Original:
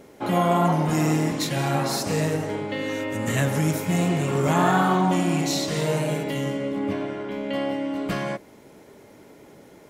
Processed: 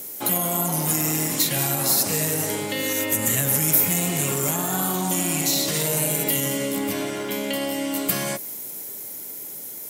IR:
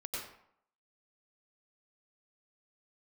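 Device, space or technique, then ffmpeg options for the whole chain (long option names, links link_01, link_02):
FM broadcast chain: -filter_complex "[0:a]highpass=76,dynaudnorm=framelen=230:gausssize=21:maxgain=6dB,acrossover=split=670|3500[link_01][link_02][link_03];[link_01]acompressor=threshold=-21dB:ratio=4[link_04];[link_02]acompressor=threshold=-32dB:ratio=4[link_05];[link_03]acompressor=threshold=-47dB:ratio=4[link_06];[link_04][link_05][link_06]amix=inputs=3:normalize=0,aemphasis=mode=production:type=75fm,alimiter=limit=-17dB:level=0:latency=1:release=48,asoftclip=type=hard:threshold=-19dB,lowpass=frequency=15000:width=0.5412,lowpass=frequency=15000:width=1.3066,aemphasis=mode=production:type=75fm"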